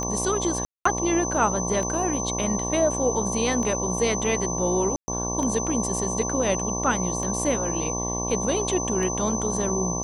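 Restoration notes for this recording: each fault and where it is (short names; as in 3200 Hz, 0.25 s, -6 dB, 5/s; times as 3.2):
buzz 60 Hz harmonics 19 -30 dBFS
tick 33 1/3 rpm -18 dBFS
tone 6100 Hz -29 dBFS
0.65–0.85 gap 0.204 s
4.96–5.08 gap 0.12 s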